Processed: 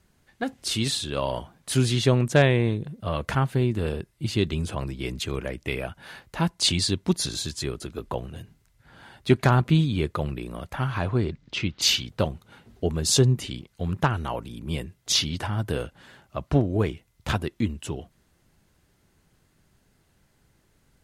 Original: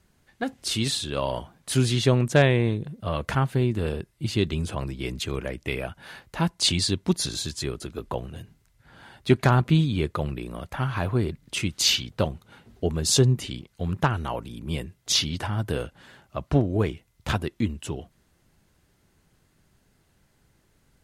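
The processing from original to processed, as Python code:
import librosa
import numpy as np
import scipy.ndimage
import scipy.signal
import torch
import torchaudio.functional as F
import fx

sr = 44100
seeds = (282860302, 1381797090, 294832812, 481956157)

y = fx.lowpass(x, sr, hz=fx.line((10.97, 10000.0), (11.81, 4000.0)), slope=24, at=(10.97, 11.81), fade=0.02)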